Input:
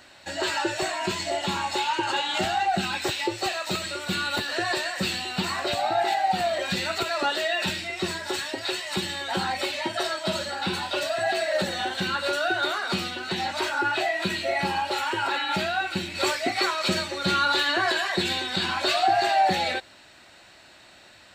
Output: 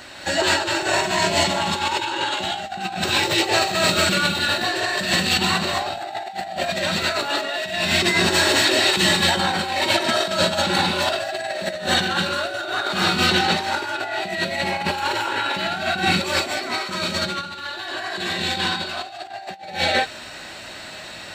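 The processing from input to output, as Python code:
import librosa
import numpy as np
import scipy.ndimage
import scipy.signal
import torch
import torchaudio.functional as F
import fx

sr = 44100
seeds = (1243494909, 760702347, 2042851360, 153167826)

y = fx.rev_gated(x, sr, seeds[0], gate_ms=270, shape='rising', drr_db=-2.0)
y = fx.over_compress(y, sr, threshold_db=-27.0, ratio=-0.5)
y = F.gain(torch.from_numpy(y), 5.5).numpy()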